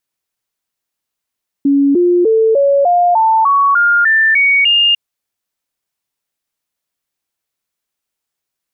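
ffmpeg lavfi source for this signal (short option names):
-f lavfi -i "aevalsrc='0.422*clip(min(mod(t,0.3),0.3-mod(t,0.3))/0.005,0,1)*sin(2*PI*280*pow(2,floor(t/0.3)/3)*mod(t,0.3))':d=3.3:s=44100"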